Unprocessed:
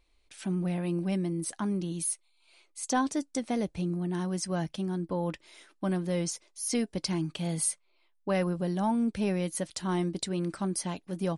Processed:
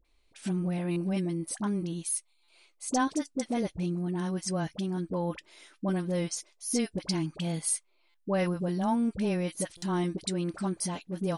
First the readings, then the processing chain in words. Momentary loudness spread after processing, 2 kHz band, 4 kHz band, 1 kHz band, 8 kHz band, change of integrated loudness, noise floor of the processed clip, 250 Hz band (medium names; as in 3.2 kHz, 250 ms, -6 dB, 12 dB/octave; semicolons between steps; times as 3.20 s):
5 LU, 0.0 dB, 0.0 dB, 0.0 dB, 0.0 dB, 0.0 dB, -68 dBFS, 0.0 dB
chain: phase dispersion highs, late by 48 ms, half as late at 820 Hz; buffer glitch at 0.91/2.43/8.09/9.77 s, samples 256, times 8